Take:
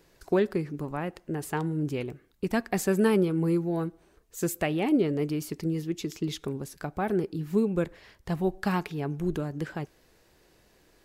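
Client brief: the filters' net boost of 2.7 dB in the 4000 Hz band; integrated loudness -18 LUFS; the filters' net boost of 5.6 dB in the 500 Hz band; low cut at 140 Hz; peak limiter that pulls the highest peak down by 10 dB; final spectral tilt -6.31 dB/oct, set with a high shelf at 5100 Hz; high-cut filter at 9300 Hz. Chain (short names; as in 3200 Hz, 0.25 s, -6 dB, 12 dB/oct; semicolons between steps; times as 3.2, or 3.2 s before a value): HPF 140 Hz; LPF 9300 Hz; bell 500 Hz +7.5 dB; bell 4000 Hz +7 dB; high shelf 5100 Hz -8 dB; gain +12 dB; limiter -7 dBFS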